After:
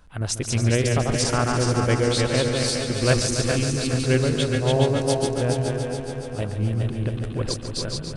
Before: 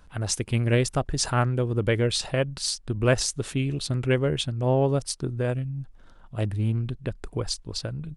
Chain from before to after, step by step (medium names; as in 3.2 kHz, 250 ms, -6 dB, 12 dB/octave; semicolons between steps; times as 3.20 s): backward echo that repeats 207 ms, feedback 56%, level -3 dB; multi-head delay 142 ms, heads all three, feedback 62%, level -12 dB